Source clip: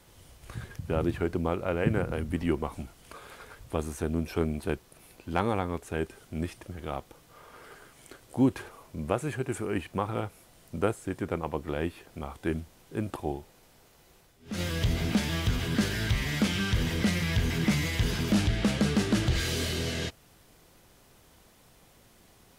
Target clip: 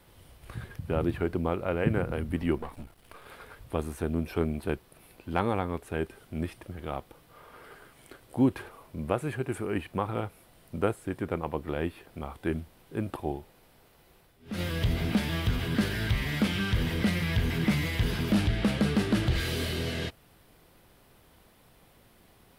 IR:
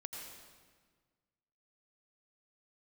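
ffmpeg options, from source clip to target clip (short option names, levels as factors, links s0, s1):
-filter_complex "[0:a]asettb=1/sr,asplit=3[s0][s1][s2];[s0]atrim=end=2.584[s3];[s1]atrim=start=2.58:end=3.26,asetpts=PTS-STARTPTS,afade=t=in:d=0.004:c=qsin,afade=t=out:st=0.676:d=0.004:c=qsin,aeval=exprs='if(lt(val(0),0),0.251*val(0),val(0))':c=same[s4];[s2]atrim=start=3.256[s5];[s3][s4]acrossfade=d=0.004:c1=hsin:c2=qsin[s6];[s6][s5]acrossfade=d=0.004:c1=qsin:c2=hsin,equalizer=f=6600:w=1.6:g=-9.5"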